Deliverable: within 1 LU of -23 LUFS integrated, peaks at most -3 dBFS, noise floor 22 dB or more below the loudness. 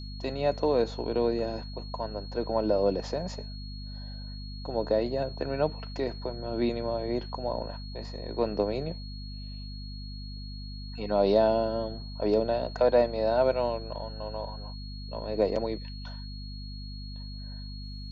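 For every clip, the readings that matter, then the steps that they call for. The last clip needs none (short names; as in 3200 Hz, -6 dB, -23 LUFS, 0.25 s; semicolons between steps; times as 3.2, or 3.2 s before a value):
hum 50 Hz; harmonics up to 250 Hz; hum level -37 dBFS; steady tone 4300 Hz; tone level -46 dBFS; loudness -29.5 LUFS; peak -11.0 dBFS; loudness target -23.0 LUFS
-> de-hum 50 Hz, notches 5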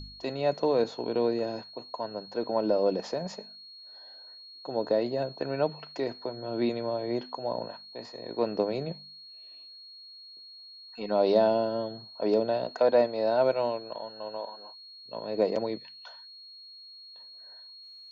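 hum none; steady tone 4300 Hz; tone level -46 dBFS
-> notch 4300 Hz, Q 30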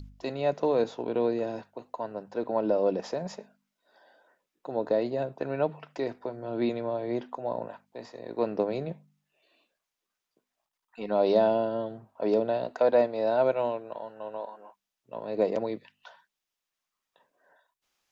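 steady tone none; loudness -29.5 LUFS; peak -11.5 dBFS; loudness target -23.0 LUFS
-> gain +6.5 dB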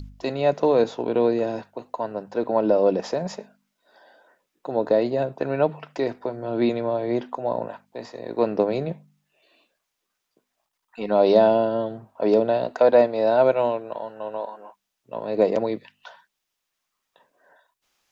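loudness -23.0 LUFS; peak -5.0 dBFS; noise floor -80 dBFS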